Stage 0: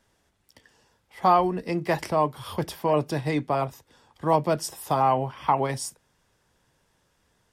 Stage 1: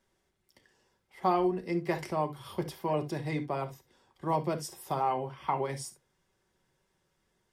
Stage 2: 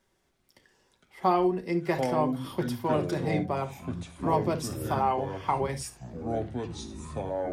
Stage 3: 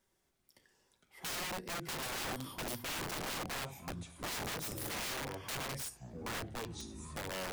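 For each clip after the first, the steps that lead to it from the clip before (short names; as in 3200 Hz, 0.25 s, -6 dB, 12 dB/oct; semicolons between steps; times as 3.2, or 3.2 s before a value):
small resonant body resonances 360/2100 Hz, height 7 dB; reverb, pre-delay 5 ms, DRR 7 dB; gain -9 dB
echoes that change speed 0.224 s, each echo -6 st, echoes 3, each echo -6 dB; gain +3 dB
high shelf 7500 Hz +10 dB; wrapped overs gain 27 dB; gain -7.5 dB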